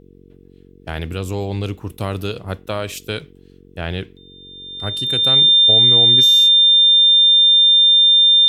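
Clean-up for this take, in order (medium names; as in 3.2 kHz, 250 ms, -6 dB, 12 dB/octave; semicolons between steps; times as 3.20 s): de-hum 46.3 Hz, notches 10; band-stop 3.6 kHz, Q 30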